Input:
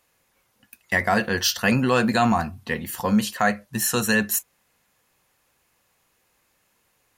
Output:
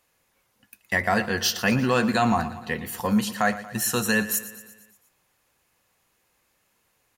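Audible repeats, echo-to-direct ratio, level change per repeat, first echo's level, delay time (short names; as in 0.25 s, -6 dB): 5, -13.5 dB, -5.0 dB, -15.0 dB, 0.117 s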